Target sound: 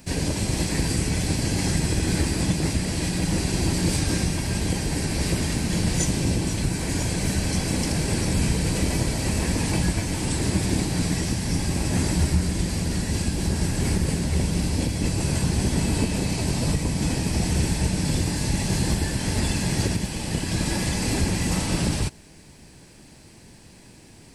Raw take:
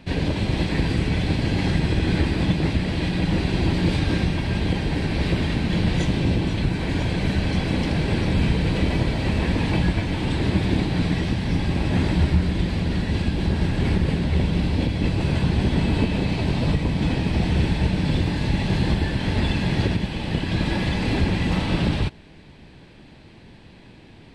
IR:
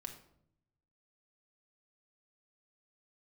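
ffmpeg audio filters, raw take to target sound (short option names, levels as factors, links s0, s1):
-af "aexciter=amount=6.2:drive=8.6:freq=5300,volume=0.75"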